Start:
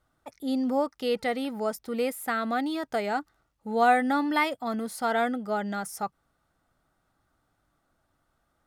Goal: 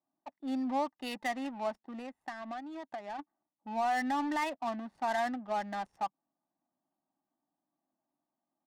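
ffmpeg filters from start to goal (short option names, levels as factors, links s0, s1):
-filter_complex "[0:a]highpass=f=260:w=0.5412,highpass=f=260:w=1.3066,aecho=1:1:1.1:0.92,asplit=3[s0][s1][s2];[s0]afade=t=out:st=1.78:d=0.02[s3];[s1]acompressor=threshold=0.0224:ratio=8,afade=t=in:st=1.78:d=0.02,afade=t=out:st=3.18:d=0.02[s4];[s2]afade=t=in:st=3.18:d=0.02[s5];[s3][s4][s5]amix=inputs=3:normalize=0,alimiter=limit=0.119:level=0:latency=1:release=56,adynamicsmooth=sensitivity=6.5:basefreq=520,volume=0.562"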